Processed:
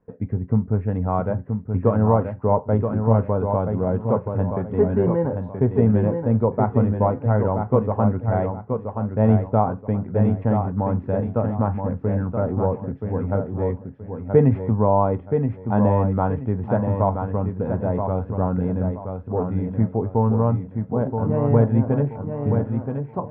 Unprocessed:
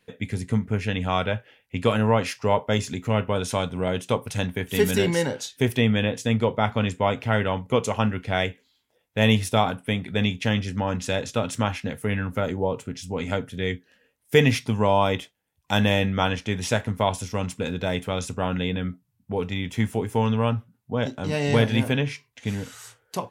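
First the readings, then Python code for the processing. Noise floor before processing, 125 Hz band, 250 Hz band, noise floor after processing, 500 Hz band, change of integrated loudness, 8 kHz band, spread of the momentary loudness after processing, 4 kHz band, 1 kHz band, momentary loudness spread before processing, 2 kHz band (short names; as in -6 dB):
-71 dBFS, +5.5 dB, +4.0 dB, -40 dBFS, +3.5 dB, +3.0 dB, under -40 dB, 8 LU, under -30 dB, +2.0 dB, 10 LU, -13.5 dB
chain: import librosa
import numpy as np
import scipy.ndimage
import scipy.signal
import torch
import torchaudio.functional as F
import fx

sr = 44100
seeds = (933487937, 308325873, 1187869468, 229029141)

y = scipy.signal.sosfilt(scipy.signal.butter(4, 1100.0, 'lowpass', fs=sr, output='sos'), x)
y = fx.low_shelf(y, sr, hz=75.0, db=8.0)
y = fx.echo_feedback(y, sr, ms=976, feedback_pct=29, wet_db=-6)
y = y * 10.0 ** (2.0 / 20.0)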